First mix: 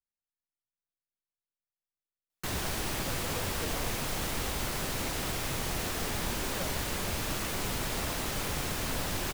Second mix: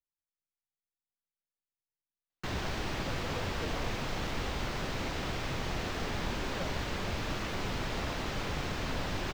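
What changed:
background: add high-shelf EQ 7,000 Hz +11.5 dB
master: add high-frequency loss of the air 200 metres

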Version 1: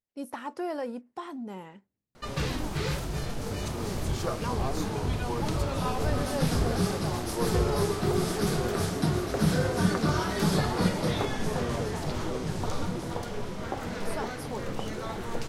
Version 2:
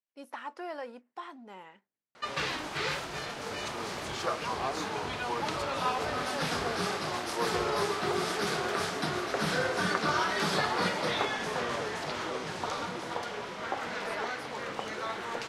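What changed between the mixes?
background +5.0 dB
master: add resonant band-pass 1,900 Hz, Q 0.56

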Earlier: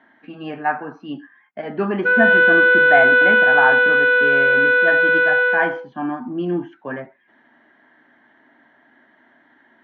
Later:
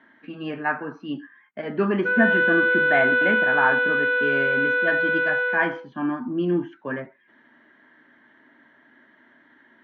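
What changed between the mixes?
speech: add parametric band 750 Hz −9.5 dB 0.38 octaves
background −7.0 dB

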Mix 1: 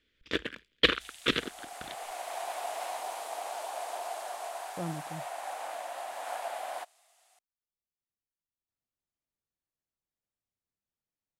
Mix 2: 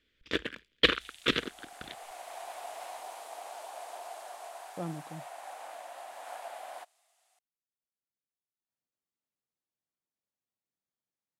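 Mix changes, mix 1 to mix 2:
speech: add high-pass filter 140 Hz
second sound −6.0 dB

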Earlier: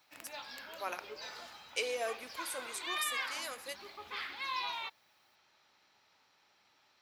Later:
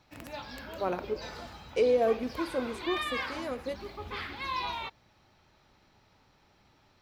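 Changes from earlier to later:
speech: add spectral tilt −4 dB per octave
master: remove high-pass filter 1,400 Hz 6 dB per octave

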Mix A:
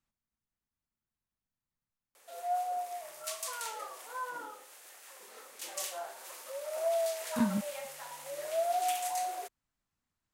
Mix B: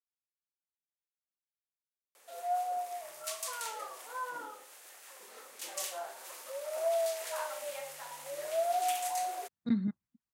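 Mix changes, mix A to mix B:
speech: entry +2.30 s
master: add high-pass filter 76 Hz

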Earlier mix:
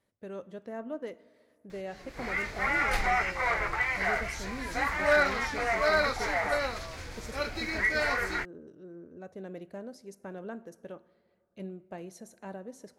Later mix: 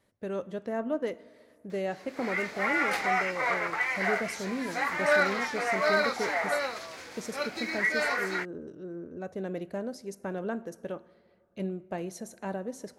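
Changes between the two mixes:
speech +7.0 dB
background: add high-pass filter 270 Hz 12 dB per octave

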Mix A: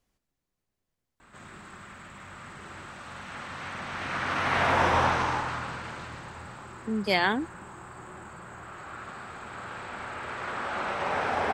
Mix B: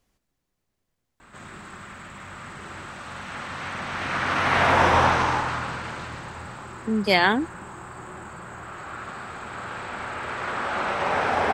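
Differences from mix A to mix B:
speech +5.5 dB
background +5.0 dB

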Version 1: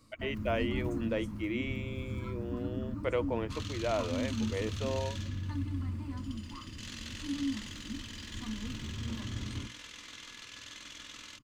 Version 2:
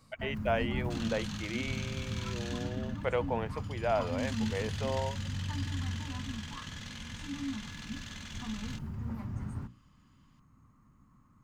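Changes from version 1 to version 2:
second sound: entry −2.60 s
master: add thirty-one-band graphic EQ 160 Hz +11 dB, 315 Hz −10 dB, 800 Hz +10 dB, 1,600 Hz +5 dB

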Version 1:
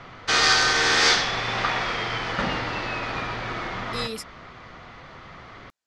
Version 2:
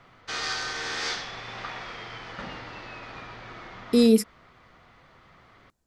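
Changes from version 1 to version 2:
speech: remove resonant band-pass 3,200 Hz, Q 0.72
background −12.0 dB

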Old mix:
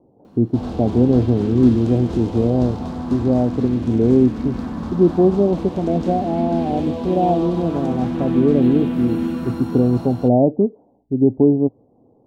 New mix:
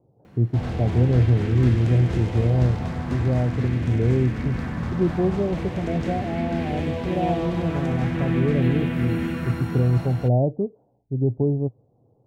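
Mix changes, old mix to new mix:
speech −5.5 dB
master: add graphic EQ with 10 bands 125 Hz +10 dB, 250 Hz −9 dB, 1,000 Hz −5 dB, 2,000 Hz +12 dB, 4,000 Hz −4 dB

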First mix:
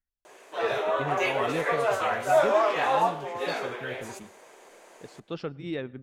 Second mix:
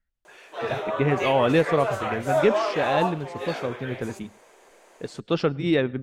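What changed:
speech +11.5 dB
background: send off

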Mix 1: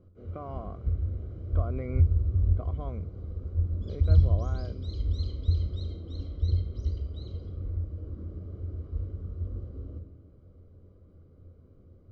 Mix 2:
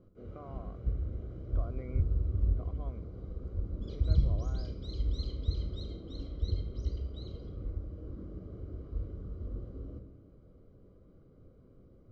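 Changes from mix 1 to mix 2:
speech −8.5 dB
master: add parametric band 85 Hz −14 dB 0.31 octaves

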